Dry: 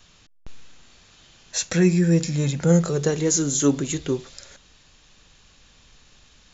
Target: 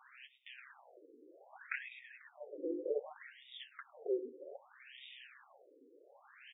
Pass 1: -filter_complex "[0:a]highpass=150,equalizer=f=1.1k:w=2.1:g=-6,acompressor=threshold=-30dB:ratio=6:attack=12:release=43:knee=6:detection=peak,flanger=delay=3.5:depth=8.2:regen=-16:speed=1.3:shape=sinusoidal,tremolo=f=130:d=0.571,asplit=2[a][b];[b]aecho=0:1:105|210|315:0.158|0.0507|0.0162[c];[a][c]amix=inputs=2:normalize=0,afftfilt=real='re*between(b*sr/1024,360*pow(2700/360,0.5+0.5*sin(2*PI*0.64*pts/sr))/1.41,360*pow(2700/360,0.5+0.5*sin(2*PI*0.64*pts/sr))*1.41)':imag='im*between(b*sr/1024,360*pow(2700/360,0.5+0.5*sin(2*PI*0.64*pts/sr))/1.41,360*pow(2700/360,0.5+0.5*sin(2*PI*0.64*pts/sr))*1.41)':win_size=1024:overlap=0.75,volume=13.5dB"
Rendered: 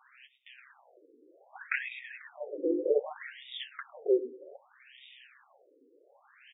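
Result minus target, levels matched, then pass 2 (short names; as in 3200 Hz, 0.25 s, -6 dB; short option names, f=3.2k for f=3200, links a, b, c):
compressor: peak gain reduction -10 dB
-filter_complex "[0:a]highpass=150,equalizer=f=1.1k:w=2.1:g=-6,acompressor=threshold=-42dB:ratio=6:attack=12:release=43:knee=6:detection=peak,flanger=delay=3.5:depth=8.2:regen=-16:speed=1.3:shape=sinusoidal,tremolo=f=130:d=0.571,asplit=2[a][b];[b]aecho=0:1:105|210|315:0.158|0.0507|0.0162[c];[a][c]amix=inputs=2:normalize=0,afftfilt=real='re*between(b*sr/1024,360*pow(2700/360,0.5+0.5*sin(2*PI*0.64*pts/sr))/1.41,360*pow(2700/360,0.5+0.5*sin(2*PI*0.64*pts/sr))*1.41)':imag='im*between(b*sr/1024,360*pow(2700/360,0.5+0.5*sin(2*PI*0.64*pts/sr))/1.41,360*pow(2700/360,0.5+0.5*sin(2*PI*0.64*pts/sr))*1.41)':win_size=1024:overlap=0.75,volume=13.5dB"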